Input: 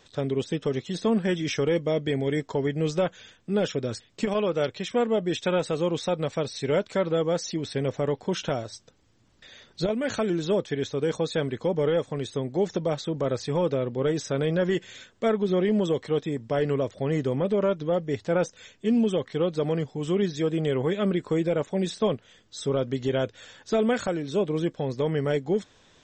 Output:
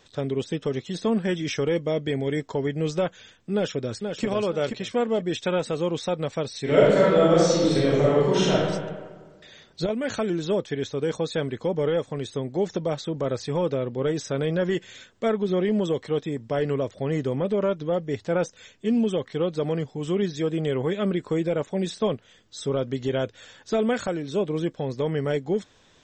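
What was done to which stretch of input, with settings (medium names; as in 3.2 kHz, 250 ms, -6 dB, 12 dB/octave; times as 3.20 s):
3.53–4.25 s: echo throw 480 ms, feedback 30%, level -6 dB
6.62–8.52 s: reverb throw, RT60 1.5 s, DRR -7.5 dB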